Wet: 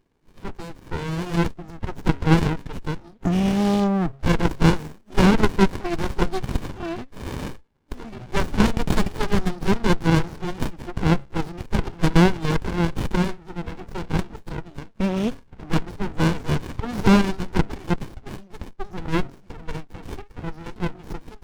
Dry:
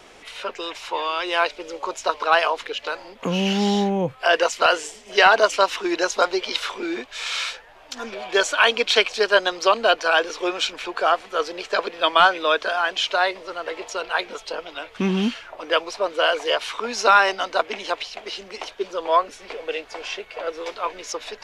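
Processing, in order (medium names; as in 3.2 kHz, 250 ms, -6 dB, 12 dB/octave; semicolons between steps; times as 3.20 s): de-hum 136.9 Hz, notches 7; spectral noise reduction 19 dB; sliding maximum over 65 samples; trim +2.5 dB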